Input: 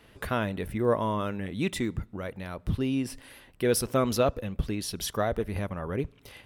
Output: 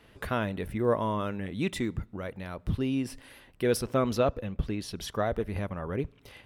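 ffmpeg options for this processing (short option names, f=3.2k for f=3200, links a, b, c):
-af "asetnsamples=n=441:p=0,asendcmd='3.77 highshelf g -12;5.25 highshelf g -6.5',highshelf=f=6.3k:g=-4,volume=-1dB"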